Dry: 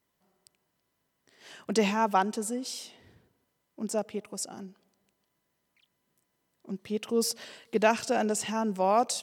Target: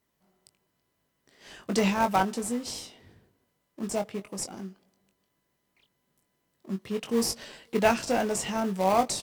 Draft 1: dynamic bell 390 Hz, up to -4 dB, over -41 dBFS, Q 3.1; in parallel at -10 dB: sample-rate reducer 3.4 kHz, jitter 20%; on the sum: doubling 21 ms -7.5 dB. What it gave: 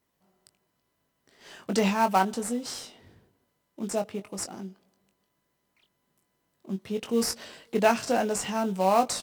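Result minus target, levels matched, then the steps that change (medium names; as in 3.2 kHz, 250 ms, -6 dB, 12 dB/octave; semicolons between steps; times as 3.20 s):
sample-rate reducer: distortion -10 dB
change: sample-rate reducer 1.5 kHz, jitter 20%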